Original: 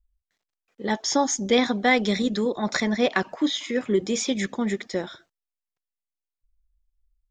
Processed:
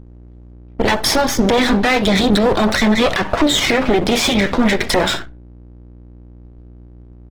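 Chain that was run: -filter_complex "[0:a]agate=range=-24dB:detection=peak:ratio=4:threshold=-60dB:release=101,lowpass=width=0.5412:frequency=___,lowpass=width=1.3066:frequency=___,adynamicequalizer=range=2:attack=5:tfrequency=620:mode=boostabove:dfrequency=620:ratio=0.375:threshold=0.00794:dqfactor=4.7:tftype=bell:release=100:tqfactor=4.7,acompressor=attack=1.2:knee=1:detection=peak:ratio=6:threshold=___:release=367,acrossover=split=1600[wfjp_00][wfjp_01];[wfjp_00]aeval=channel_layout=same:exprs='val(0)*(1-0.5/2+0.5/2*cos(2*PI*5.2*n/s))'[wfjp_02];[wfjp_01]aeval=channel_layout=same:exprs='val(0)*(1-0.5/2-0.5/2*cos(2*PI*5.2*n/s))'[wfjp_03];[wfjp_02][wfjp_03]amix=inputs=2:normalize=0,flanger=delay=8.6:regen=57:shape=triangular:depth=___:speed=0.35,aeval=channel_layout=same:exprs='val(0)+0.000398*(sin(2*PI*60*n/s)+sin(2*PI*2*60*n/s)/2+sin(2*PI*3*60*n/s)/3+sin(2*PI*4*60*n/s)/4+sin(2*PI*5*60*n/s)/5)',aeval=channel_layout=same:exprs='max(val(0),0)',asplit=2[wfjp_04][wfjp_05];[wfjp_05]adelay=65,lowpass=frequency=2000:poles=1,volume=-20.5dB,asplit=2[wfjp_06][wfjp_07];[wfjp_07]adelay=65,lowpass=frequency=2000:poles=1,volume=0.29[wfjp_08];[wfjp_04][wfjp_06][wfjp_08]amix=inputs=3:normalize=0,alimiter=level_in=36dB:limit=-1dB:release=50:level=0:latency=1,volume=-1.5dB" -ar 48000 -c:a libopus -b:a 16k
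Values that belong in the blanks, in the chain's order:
4500, 4500, -25dB, 4.1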